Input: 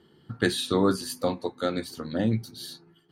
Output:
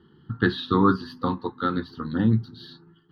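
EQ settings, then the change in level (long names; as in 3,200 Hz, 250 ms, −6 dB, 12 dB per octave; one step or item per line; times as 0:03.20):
dynamic equaliser 1,100 Hz, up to +6 dB, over −45 dBFS, Q 1.9
high-frequency loss of the air 340 metres
phaser with its sweep stopped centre 2,300 Hz, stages 6
+6.5 dB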